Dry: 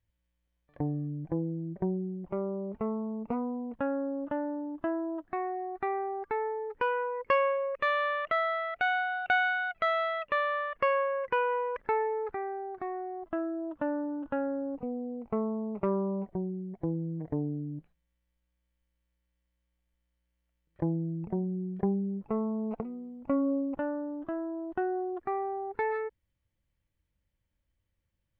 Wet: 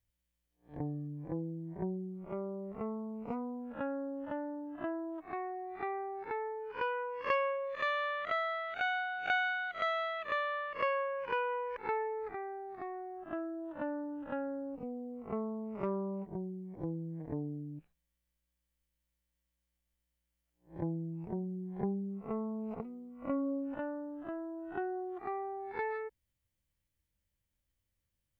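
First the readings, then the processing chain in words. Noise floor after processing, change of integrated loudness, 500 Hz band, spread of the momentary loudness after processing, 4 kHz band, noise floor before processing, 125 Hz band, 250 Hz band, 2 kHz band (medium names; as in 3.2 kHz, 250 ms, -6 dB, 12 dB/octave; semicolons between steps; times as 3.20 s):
-85 dBFS, -5.5 dB, -6.0 dB, 9 LU, -2.0 dB, -80 dBFS, -6.0 dB, -6.0 dB, -4.5 dB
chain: reverse spectral sustain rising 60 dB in 0.30 s; treble shelf 4 kHz +10 dB; trim -6.5 dB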